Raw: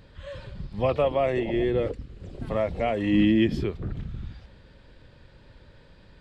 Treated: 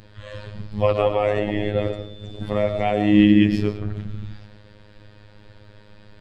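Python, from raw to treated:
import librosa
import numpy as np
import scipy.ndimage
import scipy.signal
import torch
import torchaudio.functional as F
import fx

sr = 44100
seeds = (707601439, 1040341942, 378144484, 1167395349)

y = fx.dmg_tone(x, sr, hz=3500.0, level_db=-46.0, at=(1.75, 3.22), fade=0.02)
y = fx.rev_freeverb(y, sr, rt60_s=0.65, hf_ratio=0.6, predelay_ms=65, drr_db=9.5)
y = fx.robotise(y, sr, hz=104.0)
y = F.gain(torch.from_numpy(y), 6.5).numpy()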